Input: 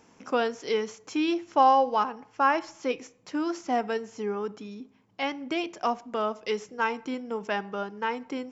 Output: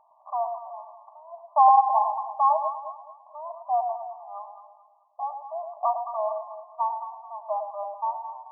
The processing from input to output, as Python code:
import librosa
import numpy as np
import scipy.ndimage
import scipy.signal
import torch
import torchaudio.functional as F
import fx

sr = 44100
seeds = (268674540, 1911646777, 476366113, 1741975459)

y = fx.brickwall_bandpass(x, sr, low_hz=590.0, high_hz=1200.0)
y = fx.echo_alternate(y, sr, ms=108, hz=850.0, feedback_pct=60, wet_db=-4.5)
y = F.gain(torch.from_numpy(y), 3.5).numpy()